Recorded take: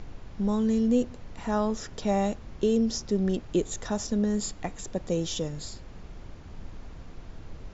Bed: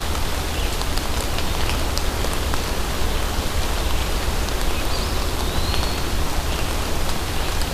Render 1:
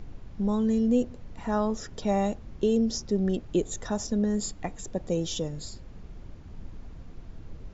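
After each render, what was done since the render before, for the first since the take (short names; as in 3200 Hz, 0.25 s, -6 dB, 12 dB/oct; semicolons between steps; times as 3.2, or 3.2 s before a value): denoiser 6 dB, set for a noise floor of -45 dBFS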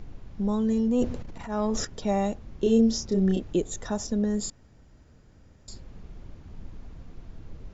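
0.72–1.85 transient shaper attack -10 dB, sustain +10 dB; 2.6–3.53 doubler 31 ms -2.5 dB; 4.5–5.68 room tone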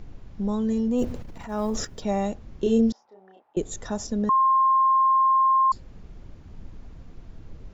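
0.98–2.04 block floating point 7-bit; 2.92–3.57 ladder band-pass 910 Hz, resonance 70%; 4.29–5.72 bleep 1060 Hz -16 dBFS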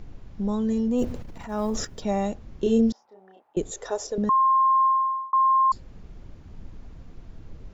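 3.71–4.18 resonant low shelf 300 Hz -13 dB, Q 3; 4.85–5.33 fade out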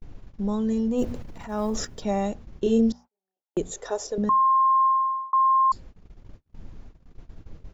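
notches 60/120/180/240 Hz; gate -40 dBFS, range -39 dB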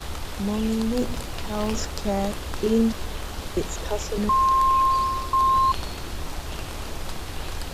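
add bed -10 dB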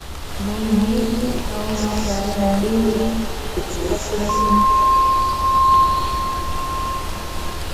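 delay with a stepping band-pass 0.574 s, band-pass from 650 Hz, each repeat 0.7 oct, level -8.5 dB; non-linear reverb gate 0.37 s rising, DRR -4 dB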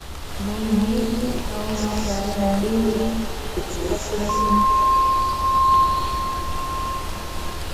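gain -2.5 dB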